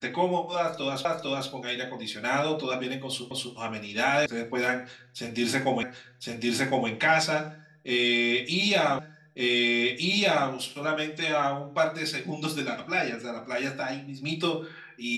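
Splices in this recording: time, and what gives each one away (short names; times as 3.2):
1.05 repeat of the last 0.45 s
3.31 repeat of the last 0.25 s
4.26 sound cut off
5.83 repeat of the last 1.06 s
8.99 repeat of the last 1.51 s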